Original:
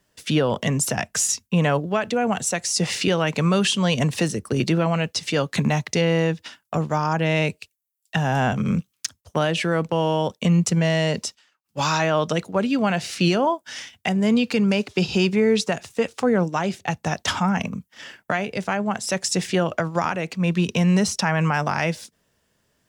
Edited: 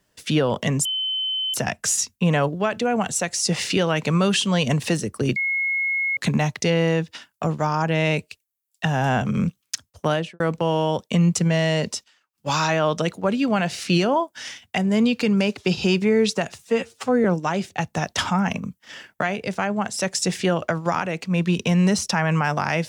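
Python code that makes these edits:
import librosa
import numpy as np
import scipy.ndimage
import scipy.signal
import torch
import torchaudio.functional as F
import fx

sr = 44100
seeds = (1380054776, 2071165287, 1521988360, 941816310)

y = fx.studio_fade_out(x, sr, start_s=9.43, length_s=0.28)
y = fx.edit(y, sr, fx.insert_tone(at_s=0.85, length_s=0.69, hz=3060.0, db=-22.0),
    fx.bleep(start_s=4.67, length_s=0.81, hz=2170.0, db=-20.0),
    fx.stretch_span(start_s=15.91, length_s=0.43, factor=1.5), tone=tone)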